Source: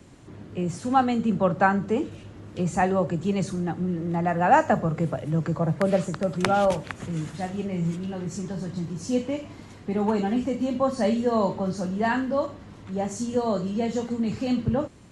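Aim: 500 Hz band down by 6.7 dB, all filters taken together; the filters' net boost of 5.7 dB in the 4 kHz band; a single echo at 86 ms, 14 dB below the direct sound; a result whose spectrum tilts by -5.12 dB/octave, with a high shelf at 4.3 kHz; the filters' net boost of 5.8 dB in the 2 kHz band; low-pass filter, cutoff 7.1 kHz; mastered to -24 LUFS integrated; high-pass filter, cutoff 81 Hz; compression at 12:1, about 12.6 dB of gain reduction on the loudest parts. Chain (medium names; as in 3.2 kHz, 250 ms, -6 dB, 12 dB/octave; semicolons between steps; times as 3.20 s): high-pass 81 Hz; low-pass 7.1 kHz; peaking EQ 500 Hz -9 dB; peaking EQ 2 kHz +7.5 dB; peaking EQ 4 kHz +7 dB; treble shelf 4.3 kHz -3.5 dB; compression 12:1, threshold -27 dBFS; delay 86 ms -14 dB; trim +8.5 dB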